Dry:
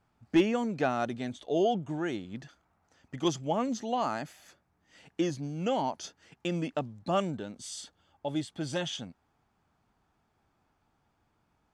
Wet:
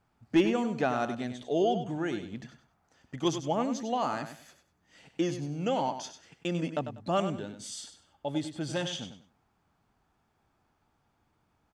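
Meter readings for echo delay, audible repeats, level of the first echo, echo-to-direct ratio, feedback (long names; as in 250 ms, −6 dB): 97 ms, 3, −9.5 dB, −9.0 dB, 24%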